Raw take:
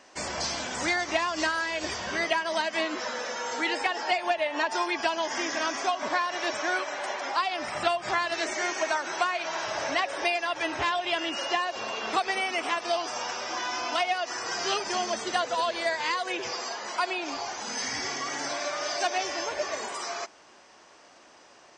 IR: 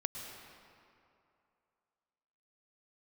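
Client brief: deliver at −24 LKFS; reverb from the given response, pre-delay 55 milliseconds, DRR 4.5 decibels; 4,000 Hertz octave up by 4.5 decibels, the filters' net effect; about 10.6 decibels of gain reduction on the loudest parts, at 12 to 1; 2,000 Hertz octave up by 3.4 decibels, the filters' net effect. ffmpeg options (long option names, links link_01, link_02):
-filter_complex "[0:a]equalizer=frequency=2000:width_type=o:gain=3,equalizer=frequency=4000:width_type=o:gain=5,acompressor=threshold=-30dB:ratio=12,asplit=2[link_01][link_02];[1:a]atrim=start_sample=2205,adelay=55[link_03];[link_02][link_03]afir=irnorm=-1:irlink=0,volume=-5.5dB[link_04];[link_01][link_04]amix=inputs=2:normalize=0,volume=7.5dB"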